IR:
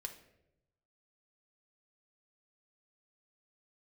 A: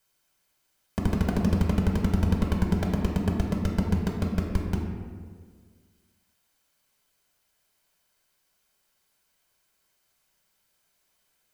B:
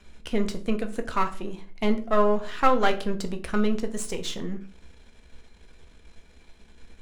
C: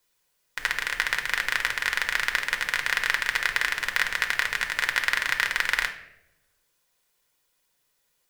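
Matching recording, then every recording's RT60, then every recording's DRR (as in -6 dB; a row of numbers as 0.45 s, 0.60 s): C; 1.7 s, 0.45 s, 0.85 s; 0.0 dB, 6.0 dB, 4.0 dB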